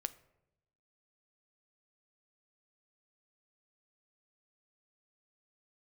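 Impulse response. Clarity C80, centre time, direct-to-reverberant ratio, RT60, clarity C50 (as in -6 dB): 20.5 dB, 3 ms, 12.5 dB, 0.85 s, 18.0 dB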